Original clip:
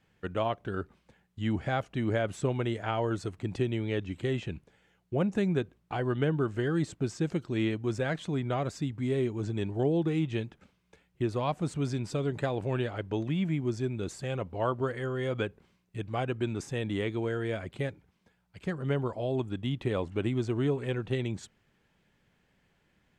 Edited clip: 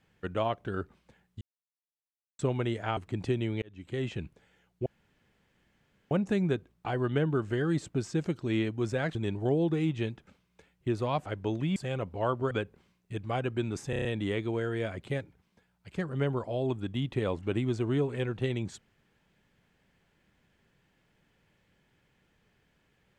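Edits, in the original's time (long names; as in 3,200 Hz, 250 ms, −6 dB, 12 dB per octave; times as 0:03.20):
0:01.41–0:02.39: silence
0:02.97–0:03.28: remove
0:03.93–0:04.43: fade in
0:05.17: splice in room tone 1.25 s
0:08.21–0:09.49: remove
0:11.60–0:12.93: remove
0:13.43–0:14.15: remove
0:14.90–0:15.35: remove
0:16.74: stutter 0.03 s, 6 plays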